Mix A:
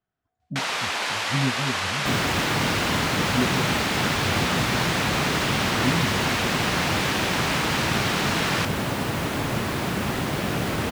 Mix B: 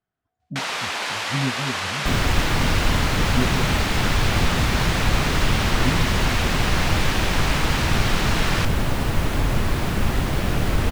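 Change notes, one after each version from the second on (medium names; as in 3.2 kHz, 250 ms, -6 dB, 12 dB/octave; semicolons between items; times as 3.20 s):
second sound: remove high-pass 140 Hz 12 dB/octave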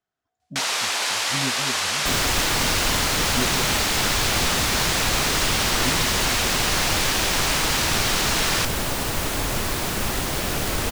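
master: add tone controls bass -8 dB, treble +10 dB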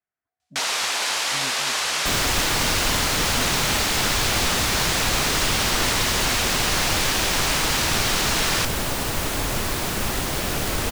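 speech: add four-pole ladder low-pass 2.6 kHz, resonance 50%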